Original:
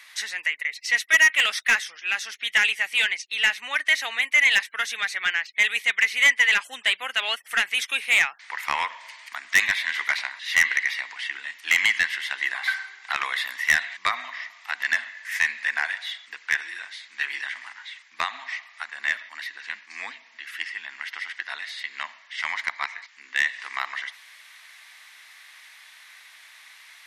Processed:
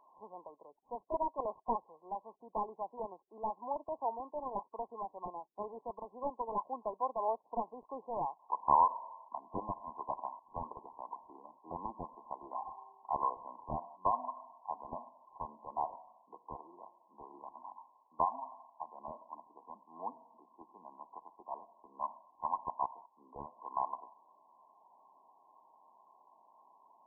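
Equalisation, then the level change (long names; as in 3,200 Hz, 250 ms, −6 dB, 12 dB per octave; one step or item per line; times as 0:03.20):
linear-phase brick-wall low-pass 1,100 Hz
+3.0 dB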